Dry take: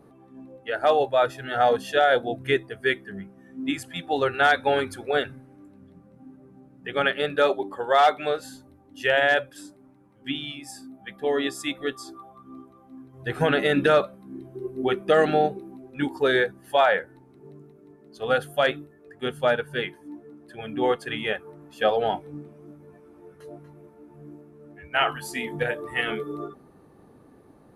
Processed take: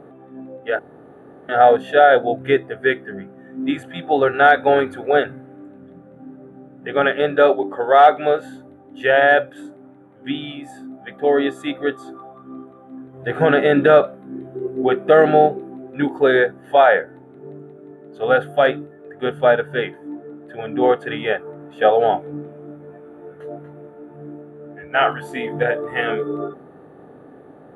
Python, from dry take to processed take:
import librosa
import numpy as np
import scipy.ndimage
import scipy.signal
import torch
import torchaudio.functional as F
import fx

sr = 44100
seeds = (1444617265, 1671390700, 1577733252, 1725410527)

y = fx.edit(x, sr, fx.room_tone_fill(start_s=0.79, length_s=0.7), tone=tone)
y = fx.bin_compress(y, sr, power=0.6)
y = fx.notch(y, sr, hz=5100.0, q=6.6)
y = fx.spectral_expand(y, sr, expansion=1.5)
y = y * librosa.db_to_amplitude(3.0)